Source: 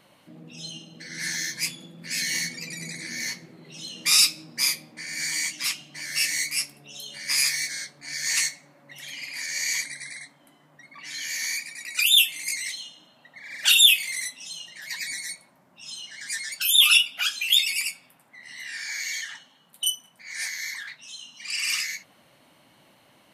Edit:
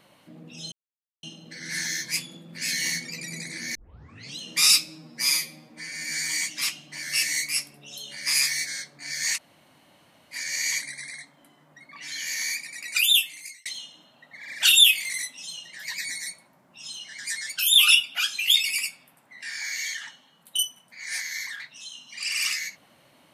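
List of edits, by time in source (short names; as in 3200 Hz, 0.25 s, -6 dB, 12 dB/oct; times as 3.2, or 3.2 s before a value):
0.72 insert silence 0.51 s
3.24 tape start 0.64 s
4.38–5.31 stretch 1.5×
8.38–9.36 room tone, crossfade 0.06 s
12.02–12.68 fade out
18.45–18.7 cut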